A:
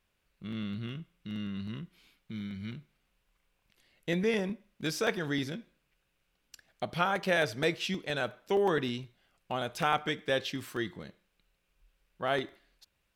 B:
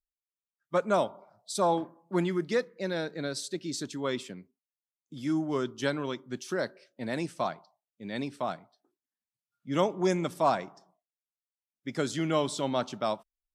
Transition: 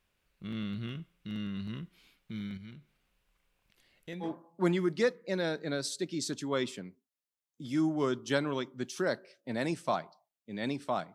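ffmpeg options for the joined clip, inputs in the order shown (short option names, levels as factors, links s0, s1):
-filter_complex "[0:a]asettb=1/sr,asplit=3[s0][s1][s2];[s0]atrim=end=2.574[s3];[s1]atrim=start=2.57:end=4.3,asetpts=PTS-STARTPTS,afade=t=in:d=0.004:c=qsin,afade=t=out:st=1.726:d=0.004:c=qsin,acompressor=threshold=0.00126:ratio=1.5:attack=3.2:release=140:knee=1:detection=peak[s4];[s2]atrim=start=4.296[s5];[s3][s4]acrossfade=d=0.004:c1=hsin:c2=qsin[s6];[s6][s5]acrossfade=d=0.004:c1=qsin:c2=hsin,apad=whole_dur=11.14,atrim=end=11.14,atrim=end=4.3,asetpts=PTS-STARTPTS[s7];[1:a]atrim=start=1.72:end=8.66,asetpts=PTS-STARTPTS[s8];[s7][s8]acrossfade=d=0.1:c1=tri:c2=tri"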